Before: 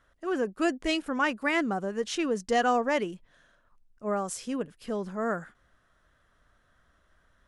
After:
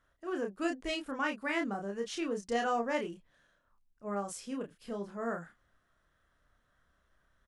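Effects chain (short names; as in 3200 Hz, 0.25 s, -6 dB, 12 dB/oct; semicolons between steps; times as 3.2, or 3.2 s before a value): doubler 30 ms -4 dB; gain -8 dB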